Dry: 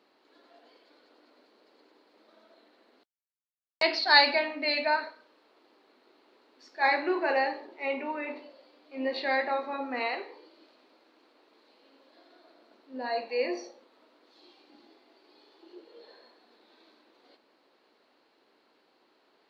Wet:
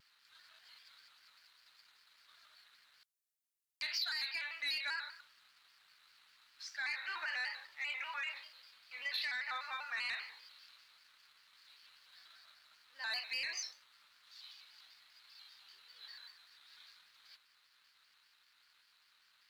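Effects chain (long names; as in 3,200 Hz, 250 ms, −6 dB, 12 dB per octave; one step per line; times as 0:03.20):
Chebyshev high-pass filter 1,400 Hz, order 3
downward compressor 8 to 1, threshold −38 dBFS, peak gain reduction 22 dB
brickwall limiter −34 dBFS, peak gain reduction 13 dB
high-shelf EQ 3,700 Hz +10 dB
leveller curve on the samples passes 1
pitch modulation by a square or saw wave square 5.1 Hz, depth 100 cents
level −1.5 dB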